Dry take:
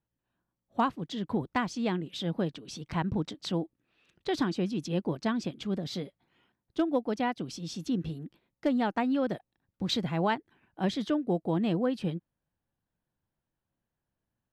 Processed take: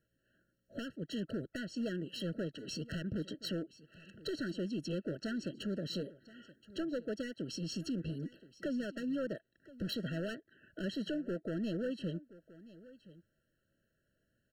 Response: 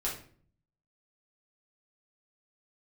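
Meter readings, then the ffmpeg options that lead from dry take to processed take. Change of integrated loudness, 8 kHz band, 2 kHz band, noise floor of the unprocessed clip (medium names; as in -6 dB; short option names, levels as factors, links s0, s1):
-8.0 dB, -4.5 dB, -7.0 dB, under -85 dBFS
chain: -filter_complex "[0:a]equalizer=f=1200:w=0.3:g=8,acompressor=threshold=0.00794:ratio=2.5,asoftclip=type=hard:threshold=0.015,asplit=2[s0][s1];[s1]aecho=0:1:1024:0.112[s2];[s0][s2]amix=inputs=2:normalize=0,afftfilt=real='re*eq(mod(floor(b*sr/1024/650),2),0)':imag='im*eq(mod(floor(b*sr/1024/650),2),0)':win_size=1024:overlap=0.75,volume=1.58"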